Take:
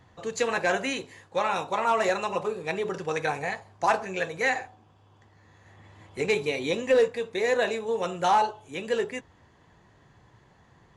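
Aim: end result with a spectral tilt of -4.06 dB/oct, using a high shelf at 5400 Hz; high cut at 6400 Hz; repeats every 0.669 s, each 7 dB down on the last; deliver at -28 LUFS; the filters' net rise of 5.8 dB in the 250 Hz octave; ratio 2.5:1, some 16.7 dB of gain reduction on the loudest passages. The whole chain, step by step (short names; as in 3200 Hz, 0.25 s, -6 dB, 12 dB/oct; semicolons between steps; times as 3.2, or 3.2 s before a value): LPF 6400 Hz; bell 250 Hz +7.5 dB; high shelf 5400 Hz -7 dB; compressor 2.5:1, threshold -42 dBFS; feedback echo 0.669 s, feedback 45%, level -7 dB; gain +11.5 dB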